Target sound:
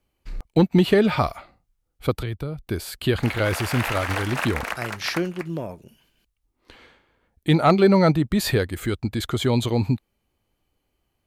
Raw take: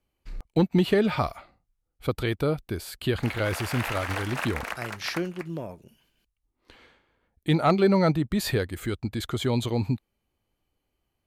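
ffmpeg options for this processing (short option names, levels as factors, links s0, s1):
-filter_complex "[0:a]asettb=1/sr,asplit=3[s0][s1][s2];[s0]atrim=end=2.174[s3];[s1]atrim=start=2.17:end=2.67,asetpts=PTS-STARTPTS,afade=t=in:d=0.004:c=qsin,afade=t=out:st=0.496:d=0.004:c=qsin,acrossover=split=130[s4][s5];[s5]acompressor=threshold=0.0126:ratio=4[s6];[s4][s6]amix=inputs=2:normalize=0[s7];[s2]atrim=start=2.666[s8];[s3][s7]acrossfade=d=0.004:c1=hsin:c2=qsin[s9];[s9][s8]acrossfade=d=0.004:c1=qsin:c2=hsin,volume=1.68"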